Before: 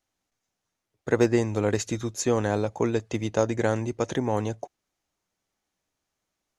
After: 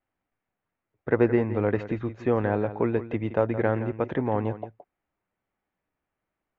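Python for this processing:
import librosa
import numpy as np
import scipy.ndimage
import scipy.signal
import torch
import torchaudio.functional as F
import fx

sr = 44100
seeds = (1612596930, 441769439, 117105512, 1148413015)

y = scipy.signal.sosfilt(scipy.signal.butter(4, 2400.0, 'lowpass', fs=sr, output='sos'), x)
y = y + 10.0 ** (-13.0 / 20.0) * np.pad(y, (int(169 * sr / 1000.0), 0))[:len(y)]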